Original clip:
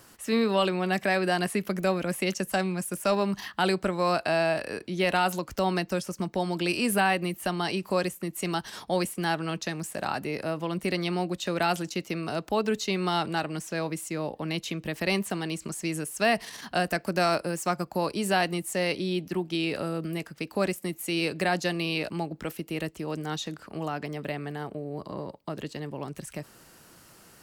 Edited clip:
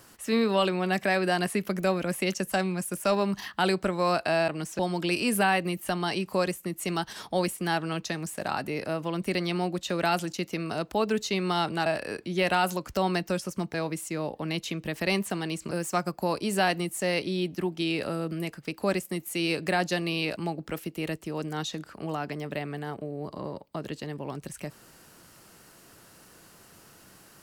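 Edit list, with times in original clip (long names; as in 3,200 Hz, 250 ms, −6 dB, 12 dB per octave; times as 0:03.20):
0:04.48–0:06.36: swap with 0:13.43–0:13.74
0:15.71–0:17.44: remove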